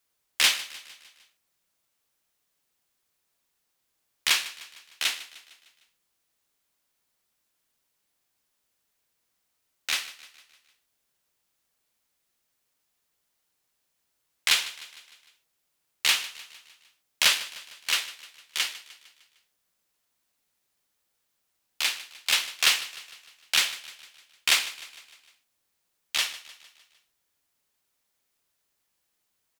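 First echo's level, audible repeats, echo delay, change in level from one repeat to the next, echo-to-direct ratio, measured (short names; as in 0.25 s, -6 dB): -17.0 dB, 4, 0.152 s, -5.5 dB, -15.5 dB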